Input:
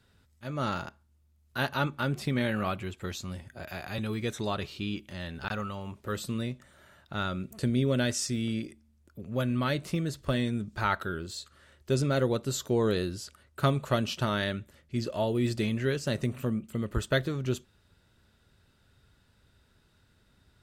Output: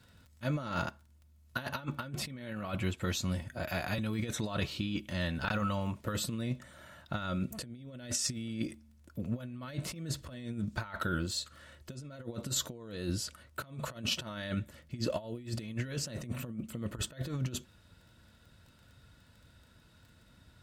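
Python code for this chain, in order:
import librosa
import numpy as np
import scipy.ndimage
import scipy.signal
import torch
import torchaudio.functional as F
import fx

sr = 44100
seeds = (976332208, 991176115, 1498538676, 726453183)

y = fx.dmg_crackle(x, sr, seeds[0], per_s=13.0, level_db=-52.0)
y = fx.notch_comb(y, sr, f0_hz=400.0)
y = fx.over_compress(y, sr, threshold_db=-35.0, ratio=-0.5)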